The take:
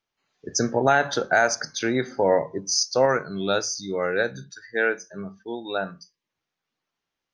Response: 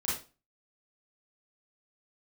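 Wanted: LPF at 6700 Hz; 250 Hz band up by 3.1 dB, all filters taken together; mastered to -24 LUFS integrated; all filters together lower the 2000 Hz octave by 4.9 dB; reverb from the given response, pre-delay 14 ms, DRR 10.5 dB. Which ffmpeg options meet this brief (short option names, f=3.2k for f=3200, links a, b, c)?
-filter_complex "[0:a]lowpass=6.7k,equalizer=f=250:t=o:g=4,equalizer=f=2k:t=o:g=-7.5,asplit=2[a][b];[1:a]atrim=start_sample=2205,adelay=14[c];[b][c]afir=irnorm=-1:irlink=0,volume=-16dB[d];[a][d]amix=inputs=2:normalize=0,volume=0.5dB"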